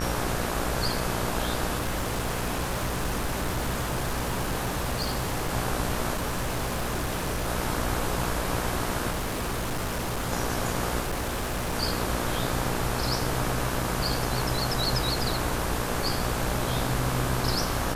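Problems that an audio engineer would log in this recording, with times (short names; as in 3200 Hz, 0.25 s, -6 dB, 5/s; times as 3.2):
buzz 60 Hz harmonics 29 -32 dBFS
1.77–5.54 clipped -24 dBFS
6.13–7.49 clipped -24.5 dBFS
9.1–10.33 clipped -26 dBFS
11–11.75 clipped -25.5 dBFS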